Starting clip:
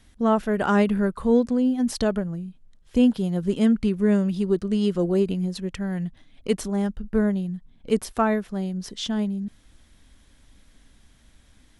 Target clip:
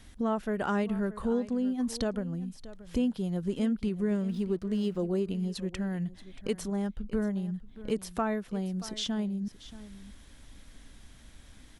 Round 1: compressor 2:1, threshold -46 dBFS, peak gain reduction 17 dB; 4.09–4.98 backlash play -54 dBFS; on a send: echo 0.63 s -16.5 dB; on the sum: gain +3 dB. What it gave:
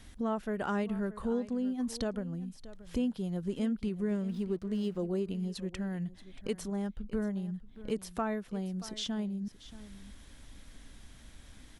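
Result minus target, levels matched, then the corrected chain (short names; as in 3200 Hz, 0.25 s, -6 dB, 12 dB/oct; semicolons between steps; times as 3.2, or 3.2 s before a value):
compressor: peak gain reduction +3 dB
compressor 2:1, threshold -39.5 dBFS, peak gain reduction 14 dB; 4.09–4.98 backlash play -54 dBFS; on a send: echo 0.63 s -16.5 dB; on the sum: gain +3 dB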